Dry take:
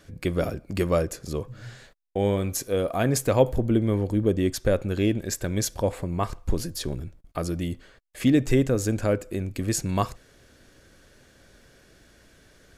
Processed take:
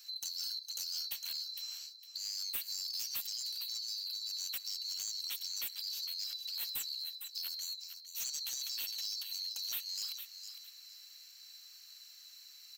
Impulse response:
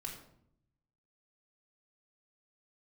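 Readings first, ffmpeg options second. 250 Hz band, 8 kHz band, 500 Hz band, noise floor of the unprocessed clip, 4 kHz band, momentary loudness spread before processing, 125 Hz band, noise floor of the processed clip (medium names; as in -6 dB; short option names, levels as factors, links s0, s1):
under -40 dB, -6.5 dB, under -40 dB, -57 dBFS, +4.5 dB, 11 LU, under -40 dB, -56 dBFS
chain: -filter_complex "[0:a]afftfilt=real='real(if(lt(b,736),b+184*(1-2*mod(floor(b/184),2)),b),0)':imag='imag(if(lt(b,736),b+184*(1-2*mod(floor(b/184),2)),b),0)':win_size=2048:overlap=0.75,afftfilt=real='re*lt(hypot(re,im),0.158)':imag='im*lt(hypot(re,im),0.158)':win_size=1024:overlap=0.75,acrossover=split=140|3100[s0][s1][s2];[s1]crystalizer=i=10:c=0[s3];[s0][s3][s2]amix=inputs=3:normalize=0,highshelf=f=12000:g=6,acompressor=threshold=0.0447:ratio=6,aderivative,acrossover=split=380|3000[s4][s5][s6];[s5]acompressor=threshold=0.00398:ratio=6[s7];[s4][s7][s6]amix=inputs=3:normalize=0,aecho=1:1:457|914|1371:0.266|0.0585|0.0129,asoftclip=type=tanh:threshold=0.0299,volume=0.841"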